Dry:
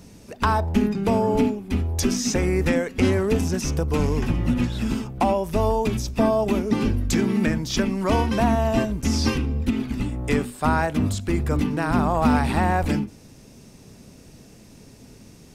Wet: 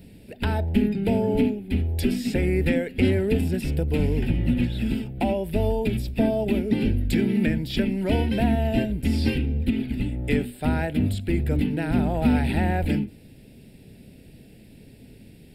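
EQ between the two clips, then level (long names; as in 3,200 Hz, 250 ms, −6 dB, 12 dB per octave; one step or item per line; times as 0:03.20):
phaser with its sweep stopped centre 2,700 Hz, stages 4
0.0 dB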